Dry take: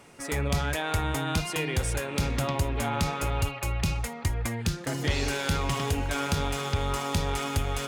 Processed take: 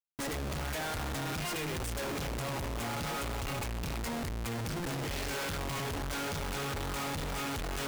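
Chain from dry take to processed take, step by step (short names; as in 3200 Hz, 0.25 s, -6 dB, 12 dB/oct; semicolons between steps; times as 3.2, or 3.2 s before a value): Schmitt trigger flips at -40.5 dBFS; gain -7 dB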